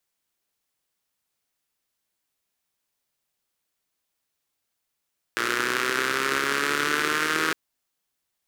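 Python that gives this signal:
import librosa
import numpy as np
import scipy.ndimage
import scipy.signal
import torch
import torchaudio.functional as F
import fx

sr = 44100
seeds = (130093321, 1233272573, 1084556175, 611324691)

y = fx.engine_four_rev(sr, seeds[0], length_s=2.16, rpm=3500, resonances_hz=(380.0, 1400.0), end_rpm=4800)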